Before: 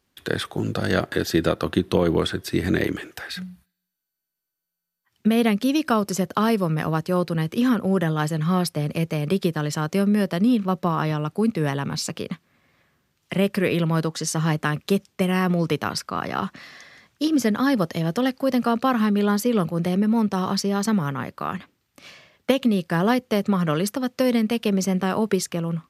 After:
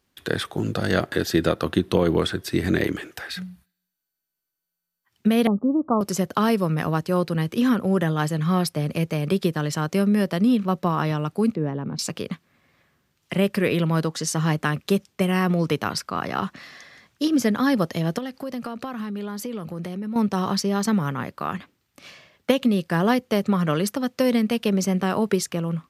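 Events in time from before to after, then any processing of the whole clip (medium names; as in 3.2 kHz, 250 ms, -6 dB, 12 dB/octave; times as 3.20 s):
5.47–6.01 s: Chebyshev low-pass 1.2 kHz, order 6
11.55–11.99 s: band-pass filter 270 Hz, Q 0.7
18.18–20.16 s: compression 5:1, threshold -28 dBFS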